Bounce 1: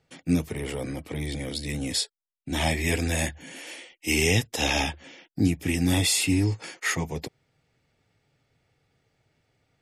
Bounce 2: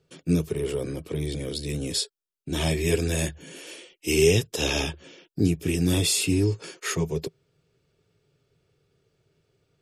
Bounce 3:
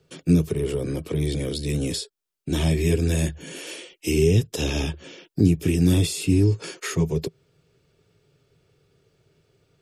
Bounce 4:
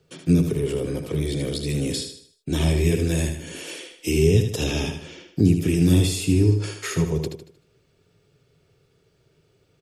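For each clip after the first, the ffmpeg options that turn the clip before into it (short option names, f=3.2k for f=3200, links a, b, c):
-af "equalizer=f=160:t=o:w=0.33:g=5,equalizer=f=250:t=o:w=0.33:g=-5,equalizer=f=400:t=o:w=0.33:g=11,equalizer=f=800:t=o:w=0.33:g=-10,equalizer=f=2k:t=o:w=0.33:g=-10"
-filter_complex "[0:a]acrossover=split=330[a][b];[b]acompressor=threshold=-35dB:ratio=4[c];[a][c]amix=inputs=2:normalize=0,volume=5.5dB"
-af "aecho=1:1:77|154|231|308|385:0.447|0.179|0.0715|0.0286|0.0114"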